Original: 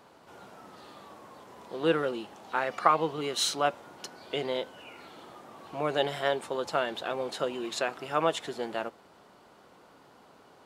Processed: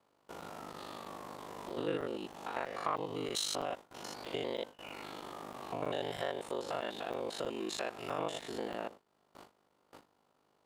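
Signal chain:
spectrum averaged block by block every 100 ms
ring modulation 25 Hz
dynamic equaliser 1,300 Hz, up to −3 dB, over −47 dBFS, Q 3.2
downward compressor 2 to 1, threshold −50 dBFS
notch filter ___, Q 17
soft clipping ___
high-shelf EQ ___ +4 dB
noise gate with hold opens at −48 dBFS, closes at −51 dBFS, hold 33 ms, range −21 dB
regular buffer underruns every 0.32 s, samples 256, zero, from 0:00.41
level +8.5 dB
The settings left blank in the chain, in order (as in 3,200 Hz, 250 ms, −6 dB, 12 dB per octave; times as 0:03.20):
1,500 Hz, −28 dBFS, 8,800 Hz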